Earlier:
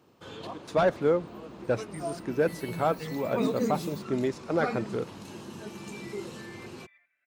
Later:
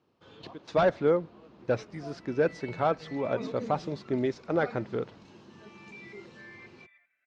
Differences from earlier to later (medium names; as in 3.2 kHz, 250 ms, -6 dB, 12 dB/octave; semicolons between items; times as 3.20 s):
first sound -10.0 dB; master: add low-pass 5.7 kHz 24 dB/octave